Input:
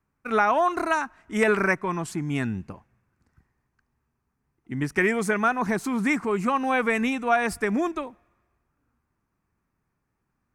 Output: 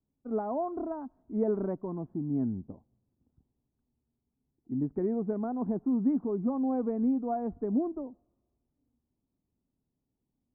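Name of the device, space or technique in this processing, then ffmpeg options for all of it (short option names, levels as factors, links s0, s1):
under water: -af "lowpass=f=710:w=0.5412,lowpass=f=710:w=1.3066,equalizer=f=260:t=o:w=0.42:g=8,volume=0.447"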